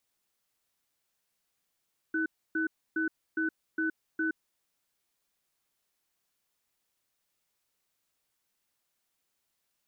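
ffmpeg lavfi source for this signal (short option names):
-f lavfi -i "aevalsrc='0.0335*(sin(2*PI*320*t)+sin(2*PI*1500*t))*clip(min(mod(t,0.41),0.12-mod(t,0.41))/0.005,0,1)':d=2.39:s=44100"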